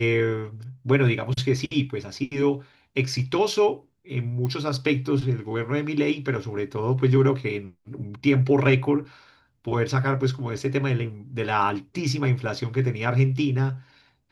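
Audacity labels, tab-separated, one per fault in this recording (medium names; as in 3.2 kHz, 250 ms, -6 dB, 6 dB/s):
4.450000	4.450000	pop -18 dBFS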